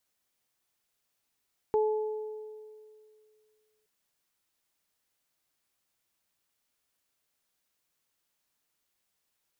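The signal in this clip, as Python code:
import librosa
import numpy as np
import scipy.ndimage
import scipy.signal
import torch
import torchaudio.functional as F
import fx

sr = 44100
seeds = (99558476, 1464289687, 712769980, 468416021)

y = fx.additive(sr, length_s=2.12, hz=430.0, level_db=-22, upper_db=(-8.0,), decay_s=2.32, upper_decays_s=(1.47,))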